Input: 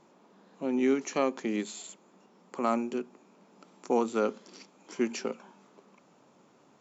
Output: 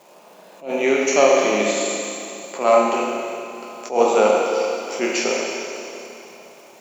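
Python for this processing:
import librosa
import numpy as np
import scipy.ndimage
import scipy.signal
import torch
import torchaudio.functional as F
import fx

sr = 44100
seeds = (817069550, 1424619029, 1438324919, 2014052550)

y = fx.spec_trails(x, sr, decay_s=0.32)
y = fx.graphic_eq_15(y, sr, hz=(250, 630, 2500), db=(-6, 11, 7))
y = fx.dmg_crackle(y, sr, seeds[0], per_s=280.0, level_db=-54.0)
y = scipy.signal.sosfilt(scipy.signal.butter(2, 170.0, 'highpass', fs=sr, output='sos'), y)
y = fx.high_shelf(y, sr, hz=4100.0, db=8.0)
y = fx.doubler(y, sr, ms=28.0, db=-12)
y = fx.rev_schroeder(y, sr, rt60_s=2.8, comb_ms=30, drr_db=-2.0)
y = fx.attack_slew(y, sr, db_per_s=180.0)
y = y * librosa.db_to_amplitude(5.0)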